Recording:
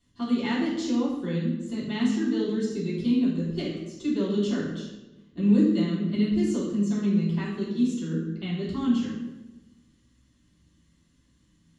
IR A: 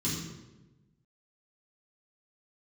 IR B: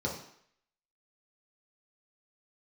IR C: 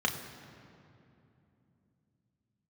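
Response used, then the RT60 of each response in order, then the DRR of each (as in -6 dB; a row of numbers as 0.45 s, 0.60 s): A; 1.1 s, 0.65 s, 2.8 s; -9.5 dB, -3.5 dB, 1.5 dB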